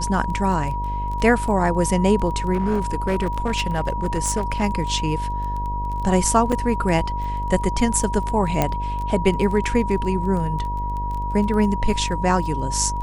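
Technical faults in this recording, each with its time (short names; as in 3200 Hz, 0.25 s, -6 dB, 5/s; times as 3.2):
buzz 50 Hz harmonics 16 -27 dBFS
crackle 12/s -28 dBFS
tone 960 Hz -26 dBFS
2.53–4.64 clipped -16 dBFS
6.52–6.53 gap 5.3 ms
8.62 pop -5 dBFS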